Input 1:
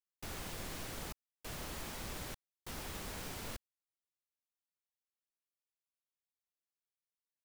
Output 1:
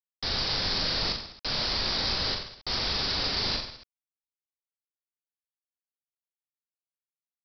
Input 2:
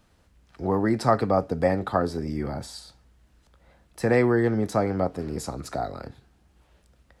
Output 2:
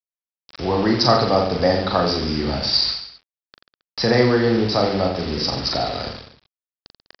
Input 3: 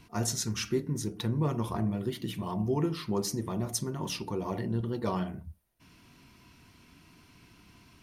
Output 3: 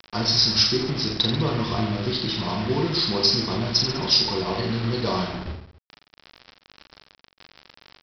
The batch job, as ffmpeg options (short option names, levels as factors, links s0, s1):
-filter_complex "[0:a]bandreject=f=50:t=h:w=6,bandreject=f=100:t=h:w=6,bandreject=f=150:t=h:w=6,bandreject=f=200:t=h:w=6,bandreject=f=250:t=h:w=6,bandreject=f=300:t=h:w=6,bandreject=f=350:t=h:w=6,bandreject=f=400:t=h:w=6,asplit=2[s0][s1];[s1]acompressor=threshold=0.01:ratio=5,volume=1.33[s2];[s0][s2]amix=inputs=2:normalize=0,aexciter=amount=9.9:drive=5.7:freq=4100,aeval=exprs='val(0)+0.00224*(sin(2*PI*50*n/s)+sin(2*PI*2*50*n/s)/2+sin(2*PI*3*50*n/s)/3+sin(2*PI*4*50*n/s)/4+sin(2*PI*5*50*n/s)/5)':c=same,aresample=11025,acrusher=bits=5:mix=0:aa=0.000001,aresample=44100,aecho=1:1:40|86|138.9|199.7|269.7:0.631|0.398|0.251|0.158|0.1,volume=1.26"